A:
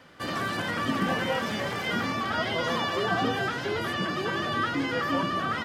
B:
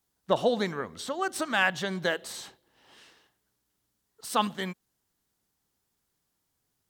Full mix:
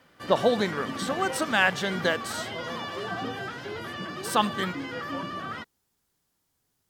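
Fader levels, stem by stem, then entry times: -6.5 dB, +2.5 dB; 0.00 s, 0.00 s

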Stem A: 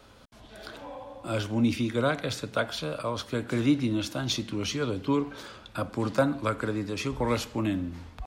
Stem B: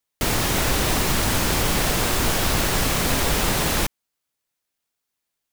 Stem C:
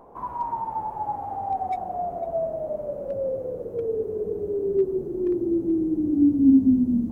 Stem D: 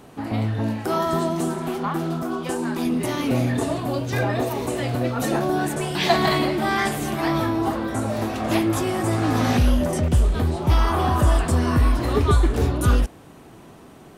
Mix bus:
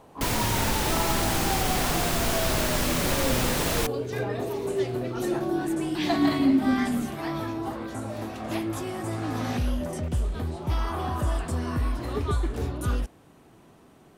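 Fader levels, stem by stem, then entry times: -18.0 dB, -5.0 dB, -5.5 dB, -9.0 dB; 0.50 s, 0.00 s, 0.00 s, 0.00 s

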